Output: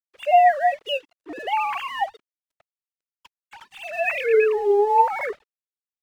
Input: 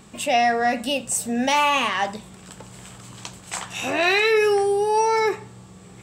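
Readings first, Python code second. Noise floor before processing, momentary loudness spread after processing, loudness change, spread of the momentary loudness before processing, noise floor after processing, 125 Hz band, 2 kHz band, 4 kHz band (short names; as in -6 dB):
-45 dBFS, 16 LU, -0.5 dB, 15 LU, under -85 dBFS, under -25 dB, -4.5 dB, -8.5 dB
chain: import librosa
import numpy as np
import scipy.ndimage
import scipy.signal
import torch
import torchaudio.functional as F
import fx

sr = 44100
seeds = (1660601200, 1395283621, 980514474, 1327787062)

y = fx.sine_speech(x, sr)
y = np.sign(y) * np.maximum(np.abs(y) - 10.0 ** (-46.0 / 20.0), 0.0)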